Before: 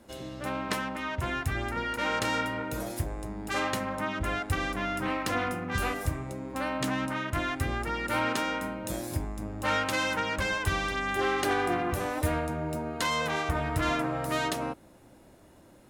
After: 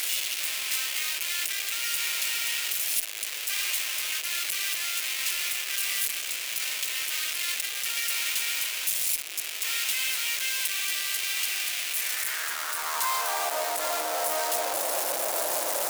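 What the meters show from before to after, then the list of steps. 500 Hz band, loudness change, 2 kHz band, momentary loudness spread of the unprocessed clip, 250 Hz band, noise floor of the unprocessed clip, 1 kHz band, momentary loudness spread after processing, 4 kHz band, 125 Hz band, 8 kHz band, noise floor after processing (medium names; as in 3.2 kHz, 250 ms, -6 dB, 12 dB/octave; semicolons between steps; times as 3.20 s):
-4.0 dB, +4.0 dB, +1.0 dB, 7 LU, under -20 dB, -55 dBFS, -3.5 dB, 2 LU, +9.0 dB, under -30 dB, +14.5 dB, -34 dBFS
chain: one-bit comparator; treble shelf 7.1 kHz +6.5 dB; high-pass sweep 2.5 kHz -> 610 Hz, 11.91–13.64 s; band noise 290–720 Hz -56 dBFS; tone controls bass -13 dB, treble +6 dB; in parallel at -7 dB: one-sided clip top -24.5 dBFS, bottom -18.5 dBFS; on the sum: trim -4 dB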